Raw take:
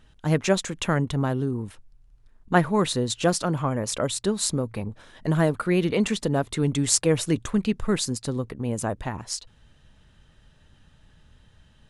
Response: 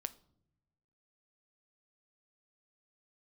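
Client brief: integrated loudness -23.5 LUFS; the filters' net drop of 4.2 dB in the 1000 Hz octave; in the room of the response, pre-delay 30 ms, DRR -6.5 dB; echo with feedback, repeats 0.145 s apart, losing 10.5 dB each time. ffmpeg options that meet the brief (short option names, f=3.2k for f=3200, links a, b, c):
-filter_complex "[0:a]equalizer=f=1k:t=o:g=-6,aecho=1:1:145|290|435:0.299|0.0896|0.0269,asplit=2[a][b];[1:a]atrim=start_sample=2205,adelay=30[c];[b][c]afir=irnorm=-1:irlink=0,volume=8.5dB[d];[a][d]amix=inputs=2:normalize=0,volume=-5.5dB"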